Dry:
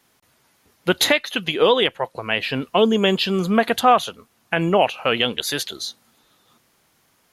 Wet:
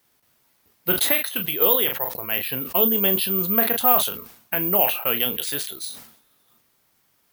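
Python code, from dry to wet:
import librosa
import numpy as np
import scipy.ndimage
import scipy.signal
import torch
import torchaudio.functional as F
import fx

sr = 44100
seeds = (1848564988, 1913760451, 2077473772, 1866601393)

y = fx.room_early_taps(x, sr, ms=(21, 40), db=(-12.5, -14.0))
y = (np.kron(y[::3], np.eye(3)[0]) * 3)[:len(y)]
y = fx.sustainer(y, sr, db_per_s=88.0)
y = y * librosa.db_to_amplitude(-8.0)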